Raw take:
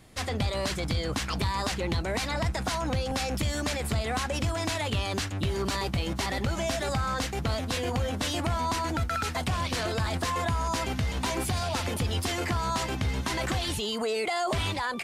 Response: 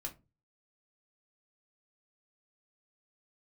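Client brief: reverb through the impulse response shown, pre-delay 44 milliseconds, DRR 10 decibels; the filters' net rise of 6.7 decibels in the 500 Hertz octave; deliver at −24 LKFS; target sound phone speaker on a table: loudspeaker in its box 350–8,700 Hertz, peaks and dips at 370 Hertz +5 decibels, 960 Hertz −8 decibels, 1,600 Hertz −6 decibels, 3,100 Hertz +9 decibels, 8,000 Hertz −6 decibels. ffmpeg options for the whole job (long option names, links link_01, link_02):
-filter_complex "[0:a]equalizer=frequency=500:width_type=o:gain=8,asplit=2[link_01][link_02];[1:a]atrim=start_sample=2205,adelay=44[link_03];[link_02][link_03]afir=irnorm=-1:irlink=0,volume=-8dB[link_04];[link_01][link_04]amix=inputs=2:normalize=0,highpass=frequency=350:width=0.5412,highpass=frequency=350:width=1.3066,equalizer=frequency=370:width_type=q:width=4:gain=5,equalizer=frequency=960:width_type=q:width=4:gain=-8,equalizer=frequency=1600:width_type=q:width=4:gain=-6,equalizer=frequency=3100:width_type=q:width=4:gain=9,equalizer=frequency=8000:width_type=q:width=4:gain=-6,lowpass=frequency=8700:width=0.5412,lowpass=frequency=8700:width=1.3066,volume=3.5dB"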